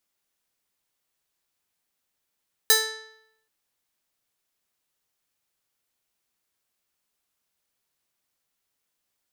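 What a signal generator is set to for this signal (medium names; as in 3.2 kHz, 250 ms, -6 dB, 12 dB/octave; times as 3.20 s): plucked string A4, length 0.78 s, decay 0.80 s, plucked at 0.39, bright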